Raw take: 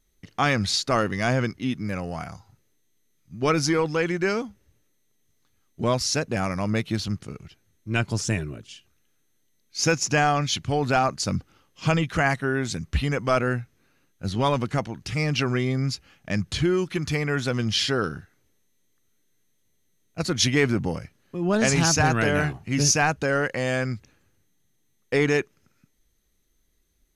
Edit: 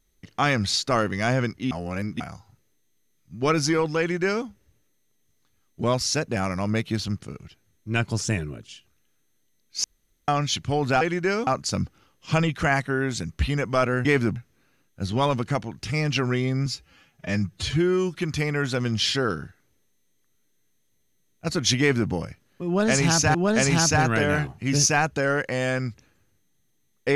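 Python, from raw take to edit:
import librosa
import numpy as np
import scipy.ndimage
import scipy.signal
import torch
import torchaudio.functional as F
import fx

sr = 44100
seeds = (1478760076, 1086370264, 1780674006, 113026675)

y = fx.edit(x, sr, fx.reverse_span(start_s=1.71, length_s=0.49),
    fx.duplicate(start_s=3.99, length_s=0.46, to_s=11.01),
    fx.room_tone_fill(start_s=9.84, length_s=0.44),
    fx.stretch_span(start_s=15.89, length_s=0.99, factor=1.5),
    fx.duplicate(start_s=20.53, length_s=0.31, to_s=13.59),
    fx.repeat(start_s=21.4, length_s=0.68, count=2), tone=tone)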